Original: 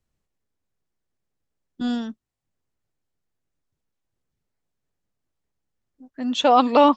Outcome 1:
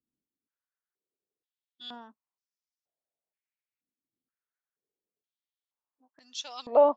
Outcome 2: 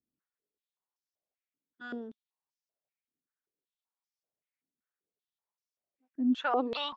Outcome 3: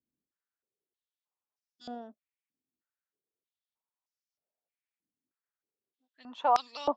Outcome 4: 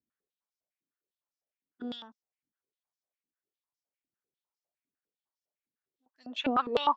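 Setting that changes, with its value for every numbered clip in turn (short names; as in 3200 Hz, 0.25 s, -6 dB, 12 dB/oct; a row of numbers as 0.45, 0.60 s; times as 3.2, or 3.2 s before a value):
stepped band-pass, rate: 2.1, 5.2, 3.2, 9.9 Hz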